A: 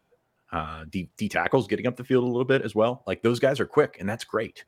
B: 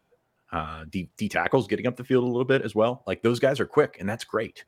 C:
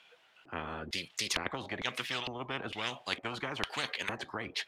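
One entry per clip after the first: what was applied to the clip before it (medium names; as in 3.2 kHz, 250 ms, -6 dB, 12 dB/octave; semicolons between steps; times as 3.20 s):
no audible change
LFO band-pass square 1.1 Hz 290–3000 Hz; spectrum-flattening compressor 10:1; trim +4 dB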